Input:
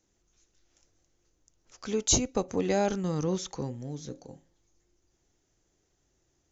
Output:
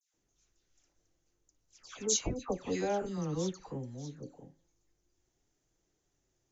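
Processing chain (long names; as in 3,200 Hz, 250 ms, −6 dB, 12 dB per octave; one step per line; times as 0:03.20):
all-pass dispersion lows, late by 140 ms, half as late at 1,800 Hz
flanger 0.86 Hz, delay 6 ms, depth 1.8 ms, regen −62%
level −1.5 dB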